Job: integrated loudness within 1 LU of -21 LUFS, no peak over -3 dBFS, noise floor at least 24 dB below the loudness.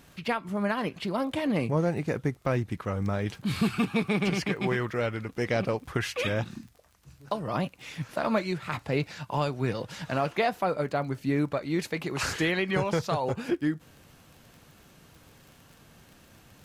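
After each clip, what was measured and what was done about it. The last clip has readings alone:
tick rate 31 per s; loudness -29.5 LUFS; peak level -14.0 dBFS; loudness target -21.0 LUFS
-> de-click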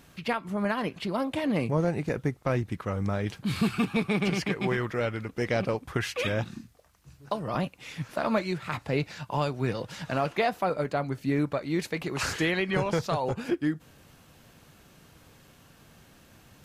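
tick rate 0.060 per s; loudness -29.5 LUFS; peak level -14.0 dBFS; loudness target -21.0 LUFS
-> trim +8.5 dB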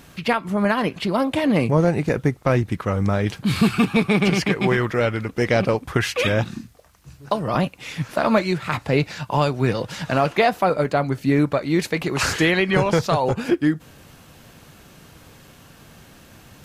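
loudness -21.0 LUFS; peak level -5.5 dBFS; noise floor -49 dBFS

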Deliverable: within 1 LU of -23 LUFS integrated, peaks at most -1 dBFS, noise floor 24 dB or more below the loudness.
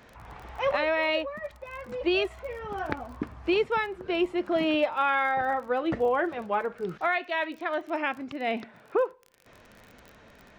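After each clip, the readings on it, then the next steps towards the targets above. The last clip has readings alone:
tick rate 27 per s; loudness -28.5 LUFS; peak level -11.5 dBFS; loudness target -23.0 LUFS
-> de-click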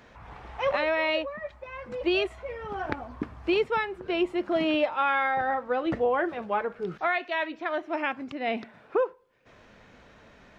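tick rate 0 per s; loudness -28.5 LUFS; peak level -11.5 dBFS; loudness target -23.0 LUFS
-> trim +5.5 dB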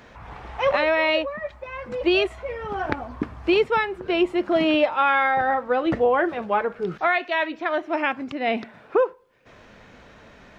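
loudness -23.0 LUFS; peak level -6.0 dBFS; noise floor -50 dBFS

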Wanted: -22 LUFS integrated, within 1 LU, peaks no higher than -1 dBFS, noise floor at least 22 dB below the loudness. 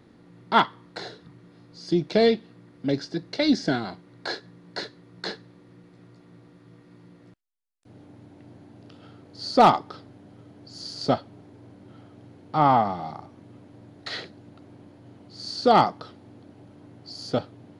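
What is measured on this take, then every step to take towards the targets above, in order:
loudness -24.5 LUFS; peak level -7.5 dBFS; loudness target -22.0 LUFS
-> trim +2.5 dB

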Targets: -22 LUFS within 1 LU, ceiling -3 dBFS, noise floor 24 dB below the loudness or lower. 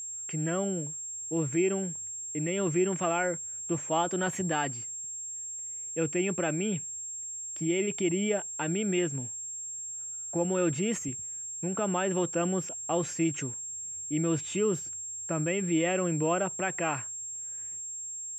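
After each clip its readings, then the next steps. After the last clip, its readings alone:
steady tone 7.5 kHz; tone level -36 dBFS; loudness -30.5 LUFS; peak level -16.0 dBFS; loudness target -22.0 LUFS
-> band-stop 7.5 kHz, Q 30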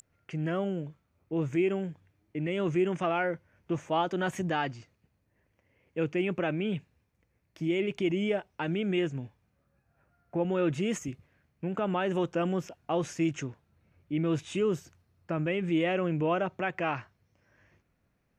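steady tone not found; loudness -31.0 LUFS; peak level -16.5 dBFS; loudness target -22.0 LUFS
-> trim +9 dB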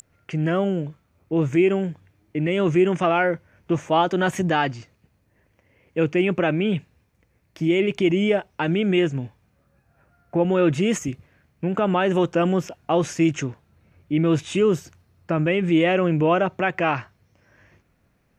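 loudness -22.0 LUFS; peak level -7.5 dBFS; noise floor -65 dBFS

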